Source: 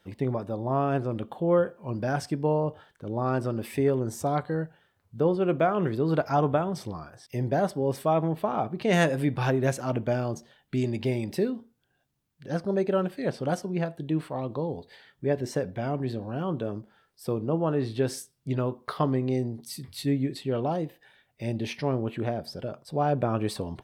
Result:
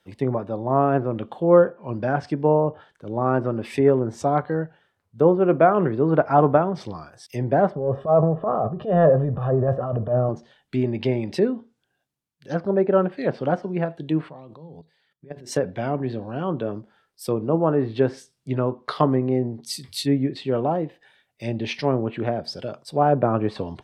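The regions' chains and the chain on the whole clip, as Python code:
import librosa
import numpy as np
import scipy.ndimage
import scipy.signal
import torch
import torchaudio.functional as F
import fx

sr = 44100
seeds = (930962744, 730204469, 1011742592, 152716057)

y = fx.chain(x, sr, fx.comb(ms=1.7, depth=0.68),
    fx.transient(attack_db=-10, sustain_db=6),
    fx.moving_average(points=20), at=(7.75, 10.29))
y = fx.chain(y, sr, fx.level_steps(step_db=22),
    fx.peak_eq(hz=160.0, db=12.0, octaves=0.23), at=(14.29, 15.52))
y = fx.env_lowpass_down(y, sr, base_hz=1700.0, full_db=-23.5)
y = fx.low_shelf(y, sr, hz=150.0, db=-6.5)
y = fx.band_widen(y, sr, depth_pct=40)
y = y * librosa.db_to_amplitude(7.0)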